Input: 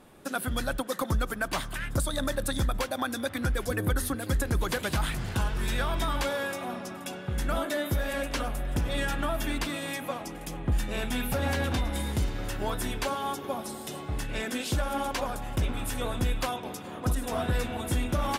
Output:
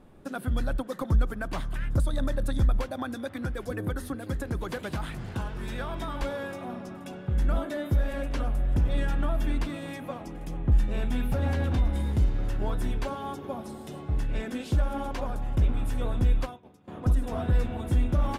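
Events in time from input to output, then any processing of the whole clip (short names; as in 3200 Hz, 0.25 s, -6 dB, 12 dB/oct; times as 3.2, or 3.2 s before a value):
3.15–6.22 HPF 200 Hz 6 dB/oct
16.42–16.88 upward expander 2.5:1, over -39 dBFS
whole clip: tilt -2.5 dB/oct; gain -4.5 dB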